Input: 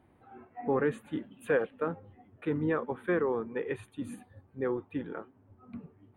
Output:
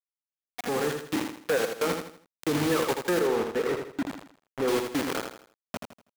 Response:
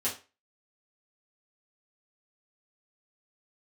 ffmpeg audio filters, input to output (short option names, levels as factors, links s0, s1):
-filter_complex "[0:a]aresample=16000,aresample=44100,acrusher=bits=5:mix=0:aa=0.000001,acompressor=threshold=0.0316:ratio=3,asoftclip=type=tanh:threshold=0.0224,asettb=1/sr,asplit=3[s0][s1][s2];[s0]atrim=end=3.194[s3];[s1]atrim=start=3.19:end=4.68,asetpts=PTS-STARTPTS,afade=t=in:d=0.004:c=qsin,afade=t=out:st=1.486:d=0.004:c=qsin,highshelf=f=2700:g=-12[s4];[s2]atrim=start=4.676[s5];[s3][s4]acrossfade=d=0.004:c1=hsin:c2=qsin[s6];[s6][s5]acrossfade=d=0.004:c1=qsin:c2=hsin,aecho=1:1:81|162|243|324:0.501|0.18|0.065|0.0234,dynaudnorm=f=140:g=11:m=2.37,lowshelf=f=130:g=-10.5,volume=1.88"